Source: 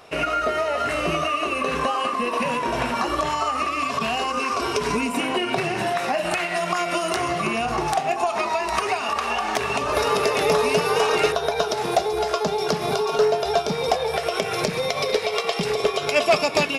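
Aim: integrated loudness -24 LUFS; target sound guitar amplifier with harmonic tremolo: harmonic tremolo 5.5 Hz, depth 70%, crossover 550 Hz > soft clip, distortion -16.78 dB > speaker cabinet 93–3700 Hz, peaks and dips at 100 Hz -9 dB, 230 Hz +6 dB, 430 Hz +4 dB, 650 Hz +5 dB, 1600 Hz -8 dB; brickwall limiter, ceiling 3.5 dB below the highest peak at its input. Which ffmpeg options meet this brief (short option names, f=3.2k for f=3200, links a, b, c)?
-filter_complex "[0:a]alimiter=limit=-13dB:level=0:latency=1,acrossover=split=550[a][b];[a]aeval=exprs='val(0)*(1-0.7/2+0.7/2*cos(2*PI*5.5*n/s))':c=same[c];[b]aeval=exprs='val(0)*(1-0.7/2-0.7/2*cos(2*PI*5.5*n/s))':c=same[d];[c][d]amix=inputs=2:normalize=0,asoftclip=threshold=-21dB,highpass=93,equalizer=f=100:t=q:w=4:g=-9,equalizer=f=230:t=q:w=4:g=6,equalizer=f=430:t=q:w=4:g=4,equalizer=f=650:t=q:w=4:g=5,equalizer=f=1.6k:t=q:w=4:g=-8,lowpass=f=3.7k:w=0.5412,lowpass=f=3.7k:w=1.3066,volume=3dB"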